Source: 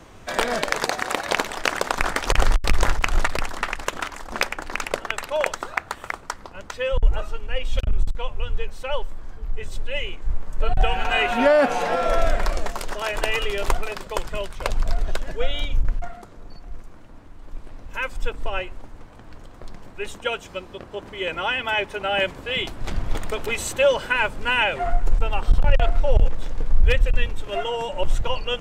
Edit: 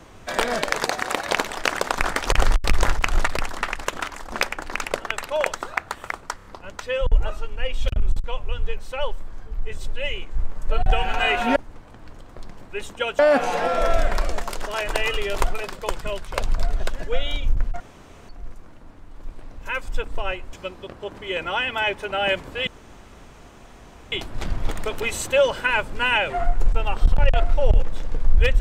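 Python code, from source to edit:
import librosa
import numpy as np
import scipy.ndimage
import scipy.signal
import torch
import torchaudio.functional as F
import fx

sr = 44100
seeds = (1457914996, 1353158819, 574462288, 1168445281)

y = fx.edit(x, sr, fx.stutter(start_s=6.36, slice_s=0.03, count=4),
    fx.room_tone_fill(start_s=16.08, length_s=0.49),
    fx.move(start_s=18.81, length_s=1.63, to_s=11.47),
    fx.insert_room_tone(at_s=22.58, length_s=1.45), tone=tone)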